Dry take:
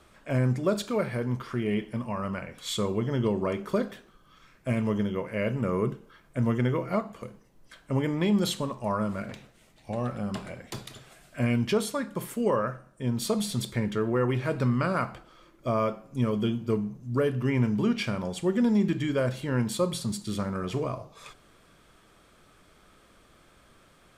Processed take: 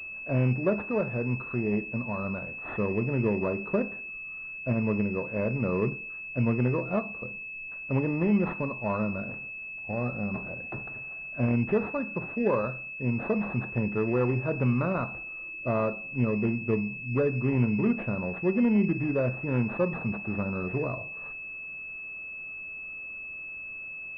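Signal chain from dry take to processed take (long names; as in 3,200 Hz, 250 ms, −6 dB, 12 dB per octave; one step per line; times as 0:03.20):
switching amplifier with a slow clock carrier 2,600 Hz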